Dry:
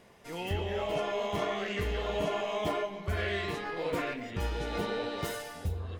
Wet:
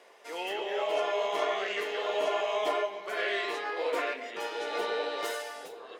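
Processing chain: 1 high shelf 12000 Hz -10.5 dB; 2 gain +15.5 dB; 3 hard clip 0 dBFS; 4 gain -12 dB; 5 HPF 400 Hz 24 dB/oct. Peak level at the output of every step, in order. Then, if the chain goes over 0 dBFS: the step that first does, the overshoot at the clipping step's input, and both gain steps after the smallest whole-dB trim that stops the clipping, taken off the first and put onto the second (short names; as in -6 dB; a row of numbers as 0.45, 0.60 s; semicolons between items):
-20.0, -4.5, -4.5, -16.5, -17.5 dBFS; no overload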